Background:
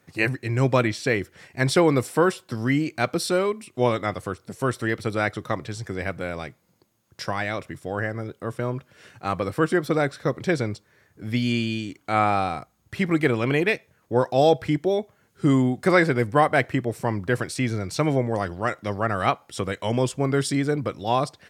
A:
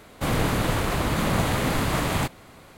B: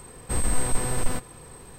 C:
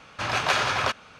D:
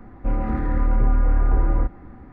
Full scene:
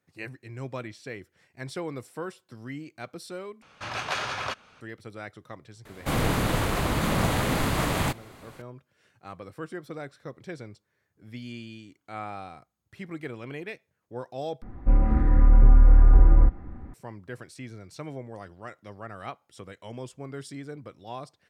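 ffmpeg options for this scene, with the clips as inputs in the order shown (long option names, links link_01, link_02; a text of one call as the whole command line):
ffmpeg -i bed.wav -i cue0.wav -i cue1.wav -i cue2.wav -i cue3.wav -filter_complex "[0:a]volume=-16dB[link_01];[4:a]lowshelf=frequency=170:gain=8[link_02];[link_01]asplit=3[link_03][link_04][link_05];[link_03]atrim=end=3.624[link_06];[3:a]atrim=end=1.19,asetpts=PTS-STARTPTS,volume=-7dB[link_07];[link_04]atrim=start=4.806:end=14.624[link_08];[link_02]atrim=end=2.32,asetpts=PTS-STARTPTS,volume=-4dB[link_09];[link_05]atrim=start=16.936[link_10];[1:a]atrim=end=2.77,asetpts=PTS-STARTPTS,volume=-1.5dB,afade=type=in:duration=0.004:curve=hsin,afade=type=out:start_time=2.766:duration=0.004:curve=hsin,adelay=257985S[link_11];[link_06][link_07]acrossfade=duration=0.004:curve1=hsin:curve2=hsin[link_12];[link_12][link_08]acrossfade=duration=0.004:curve1=hsin:curve2=hsin[link_13];[link_13][link_09]acrossfade=duration=0.004:curve1=hsin:curve2=hsin[link_14];[link_14][link_10]acrossfade=duration=0.004:curve1=hsin:curve2=hsin[link_15];[link_15][link_11]amix=inputs=2:normalize=0" out.wav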